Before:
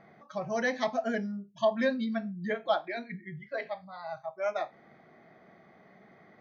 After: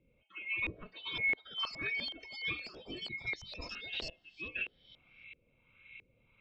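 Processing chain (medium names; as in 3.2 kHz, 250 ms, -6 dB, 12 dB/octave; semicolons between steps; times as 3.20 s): split-band scrambler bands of 2 kHz; low-pass that closes with the level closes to 1.3 kHz, closed at -26.5 dBFS; bass shelf 450 Hz -3.5 dB; LFO low-pass saw up 1.5 Hz 410–2600 Hz; ever faster or slower copies 708 ms, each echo +6 st, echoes 2, each echo -6 dB; 3.47–4.10 s: decay stretcher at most 47 dB/s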